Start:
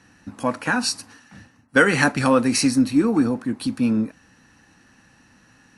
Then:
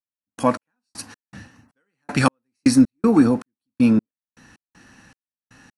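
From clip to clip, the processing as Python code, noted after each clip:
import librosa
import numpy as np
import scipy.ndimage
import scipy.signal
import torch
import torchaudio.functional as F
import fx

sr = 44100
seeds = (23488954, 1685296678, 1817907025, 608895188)

y = fx.step_gate(x, sr, bpm=79, pattern='..x..x.xx', floor_db=-60.0, edge_ms=4.5)
y = y * 10.0 ** (4.5 / 20.0)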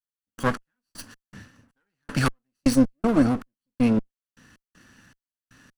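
y = fx.lower_of_two(x, sr, delay_ms=0.66)
y = y * 10.0 ** (-3.5 / 20.0)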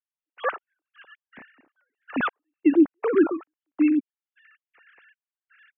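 y = fx.sine_speech(x, sr)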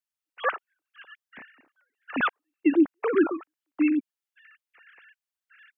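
y = fx.tilt_shelf(x, sr, db=-3.5, hz=970.0)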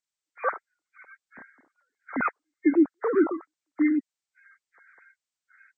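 y = fx.freq_compress(x, sr, knee_hz=1300.0, ratio=1.5)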